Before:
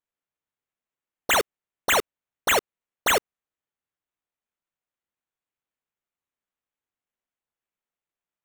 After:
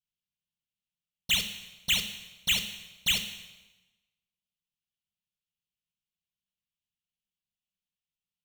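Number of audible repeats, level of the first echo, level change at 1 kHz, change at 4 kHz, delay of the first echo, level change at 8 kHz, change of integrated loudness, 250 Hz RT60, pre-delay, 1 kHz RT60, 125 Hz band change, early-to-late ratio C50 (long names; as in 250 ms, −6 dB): no echo audible, no echo audible, −24.5 dB, +2.5 dB, no echo audible, −5.0 dB, −5.0 dB, 1.1 s, 4 ms, 1.1 s, +2.0 dB, 10.0 dB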